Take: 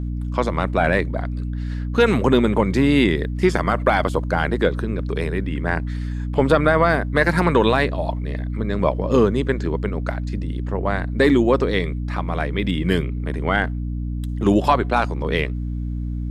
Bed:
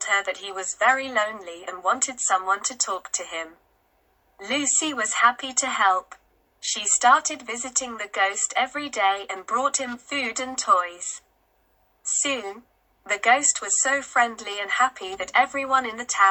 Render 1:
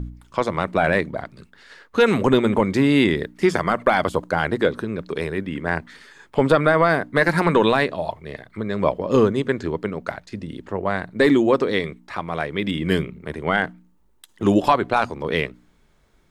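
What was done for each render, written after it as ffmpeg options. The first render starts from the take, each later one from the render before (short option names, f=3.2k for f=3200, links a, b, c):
-af "bandreject=f=60:t=h:w=4,bandreject=f=120:t=h:w=4,bandreject=f=180:t=h:w=4,bandreject=f=240:t=h:w=4,bandreject=f=300:t=h:w=4"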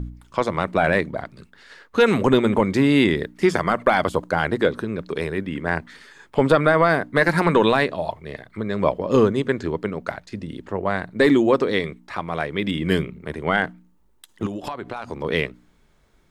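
-filter_complex "[0:a]asplit=3[a][b][c];[a]afade=t=out:st=14.45:d=0.02[d];[b]acompressor=threshold=-26dB:ratio=10:attack=3.2:release=140:knee=1:detection=peak,afade=t=in:st=14.45:d=0.02,afade=t=out:st=15.07:d=0.02[e];[c]afade=t=in:st=15.07:d=0.02[f];[d][e][f]amix=inputs=3:normalize=0"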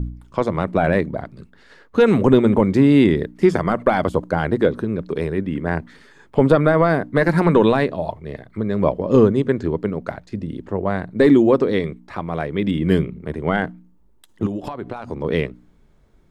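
-af "tiltshelf=f=780:g=5.5"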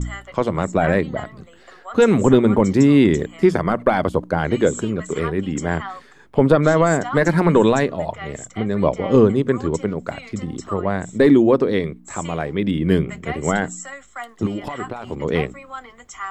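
-filter_complex "[1:a]volume=-13dB[a];[0:a][a]amix=inputs=2:normalize=0"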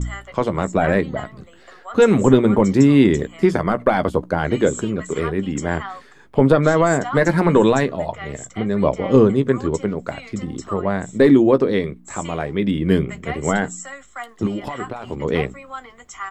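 -filter_complex "[0:a]asplit=2[a][b];[b]adelay=15,volume=-12.5dB[c];[a][c]amix=inputs=2:normalize=0"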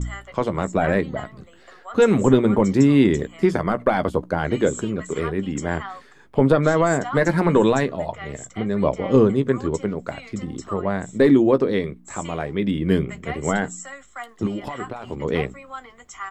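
-af "volume=-2.5dB"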